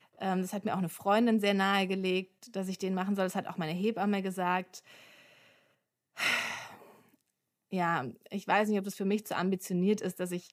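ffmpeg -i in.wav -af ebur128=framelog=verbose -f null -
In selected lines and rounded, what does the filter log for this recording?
Integrated loudness:
  I:         -31.5 LUFS
  Threshold: -42.3 LUFS
Loudness range:
  LRA:         5.3 LU
  Threshold: -53.2 LUFS
  LRA low:   -36.0 LUFS
  LRA high:  -30.7 LUFS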